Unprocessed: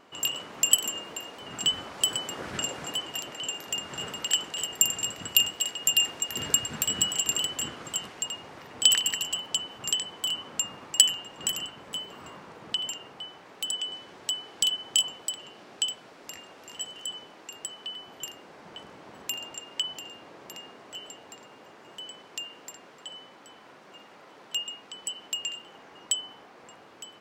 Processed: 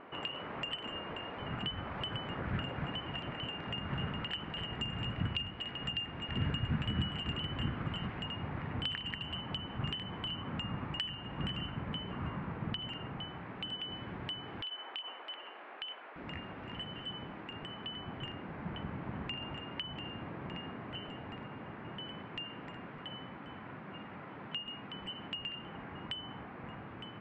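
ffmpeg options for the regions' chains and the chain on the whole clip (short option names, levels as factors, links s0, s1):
-filter_complex "[0:a]asettb=1/sr,asplit=3[s0][s1][s2];[s0]atrim=end=14.614[s3];[s1]atrim=start=14.61:end=16.16,asetpts=PTS-STARTPTS,afade=t=in:d=0.004:c=qsin,afade=t=out:st=1.546:d=0.004:c=qsin,highpass=f=300:w=0.5412,highpass=f=300:w=1.3066,acrossover=split=470 4500:gain=0.178 1 0.0708[s4][s5][s6];[s4][s5][s6]amix=inputs=3:normalize=0,acompressor=threshold=0.0224:ratio=3:attack=3.2:release=140:knee=1:detection=peak[s7];[s2]atrim=start=16.156[s8];[s3][s7]acrossfade=d=0.004:c1=hsin:c2=qsin[s9];[s9][s8]acrossfade=d=0.004:c1=qsin:c2=hsin,lowpass=f=2400:w=0.5412,lowpass=f=2400:w=1.3066,acompressor=threshold=0.00708:ratio=3,asubboost=boost=7:cutoff=170,volume=1.68"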